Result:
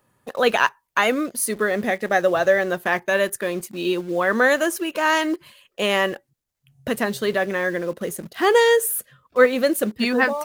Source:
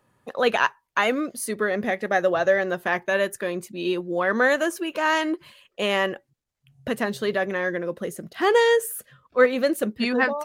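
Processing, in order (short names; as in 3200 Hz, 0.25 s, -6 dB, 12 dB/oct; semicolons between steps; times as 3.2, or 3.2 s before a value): high shelf 8800 Hz +9 dB; in parallel at -10 dB: requantised 6-bit, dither none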